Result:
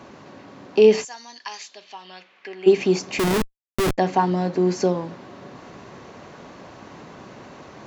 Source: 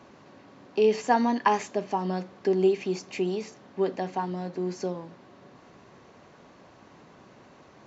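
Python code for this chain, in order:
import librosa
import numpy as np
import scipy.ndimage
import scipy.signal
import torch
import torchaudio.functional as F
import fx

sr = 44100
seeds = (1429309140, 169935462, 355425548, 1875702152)

p1 = fx.rider(x, sr, range_db=3, speed_s=2.0)
p2 = x + (p1 * 10.0 ** (-2.5 / 20.0))
p3 = fx.bandpass_q(p2, sr, hz=fx.line((1.03, 6900.0), (2.66, 2000.0)), q=2.6, at=(1.03, 2.66), fade=0.02)
p4 = fx.schmitt(p3, sr, flips_db=-25.0, at=(3.19, 3.98))
y = p4 * 10.0 ** (4.5 / 20.0)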